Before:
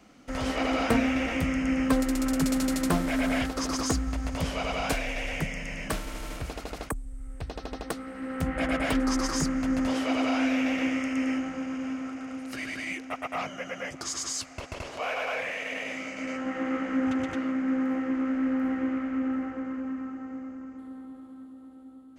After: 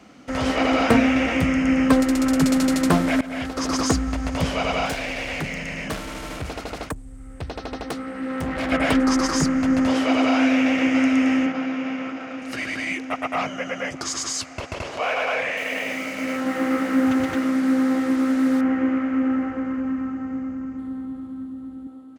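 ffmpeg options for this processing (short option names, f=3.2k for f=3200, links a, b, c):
-filter_complex "[0:a]asettb=1/sr,asplit=3[a][b][c];[a]atrim=end=4.854[d];[b]atrim=start=4.85:end=8.72,asetpts=PTS-STARTPTS,afade=t=in:d=0.004:c=qsin,afade=t=out:st=3.866:d=0.004:c=qsin,asoftclip=type=hard:threshold=-30.5dB[e];[c]atrim=start=8.716[f];[d][e]acrossfade=d=0.004:c1=hsin:c2=qsin[g];[g][f]acrossfade=d=0.004:c1=qsin:c2=hsin,asplit=2[h][i];[i]afade=t=in:st=10.34:d=0.01,afade=t=out:st=10.92:d=0.01,aecho=0:1:600|1200|1800|2400|3000|3600|4200:0.446684|0.245676|0.135122|0.074317|0.0408743|0.0224809|0.0123645[j];[h][j]amix=inputs=2:normalize=0,asettb=1/sr,asplit=3[k][l][m];[k]atrim=end=11.464[n];[l]atrim=start=11.46:end=12.42,asetpts=PTS-STARTPTS,afade=t=in:d=0.004:c=qsin,afade=t=out:st=0.956:d=0.004:c=qsin,highpass=140,lowpass=4.8k[o];[m]atrim=start=12.416[p];[n][o]acrossfade=d=0.004:c1=hsin:c2=qsin[q];[q][p]acrossfade=d=0.004:c1=qsin:c2=hsin,asettb=1/sr,asplit=3[r][s][t];[r]atrim=end=15.574[u];[s]atrim=start=15.57:end=18.61,asetpts=PTS-STARTPTS,afade=t=in:d=0.004:c=qsin,afade=t=out:st=3.036:d=0.004:c=qsin,acrusher=bits=6:mix=0:aa=0.5[v];[t]atrim=start=18.606[w];[u][v]acrossfade=d=0.004:c1=hsin:c2=qsin[x];[x][w]acrossfade=d=0.004:c1=qsin:c2=hsin,asettb=1/sr,asplit=3[y][z][aa];[y]atrim=end=19.284[ab];[z]atrim=start=19.28:end=21.87,asetpts=PTS-STARTPTS,afade=t=in:d=0.004:c=qsin,afade=t=out:st=2.586:d=0.004:c=qsin,asubboost=boost=7:cutoff=220[ac];[aa]atrim=start=21.866[ad];[ab][ac]acrossfade=d=0.004:c1=hsin:c2=qsin[ae];[ae][ad]acrossfade=d=0.004:c1=qsin:c2=hsin,asplit=2[af][ag];[af]atrim=end=3.21,asetpts=PTS-STARTPTS,afade=t=out:st=3.206:d=0.004:c=hsin:silence=0.105925[ah];[ag]atrim=start=3.21,asetpts=PTS-STARTPTS,afade=t=in:d=0.55:silence=0.105925[ai];[ah][ai]concat=n=2:v=0:a=1,highpass=65,highshelf=f=8.9k:g=-8,volume=7.5dB"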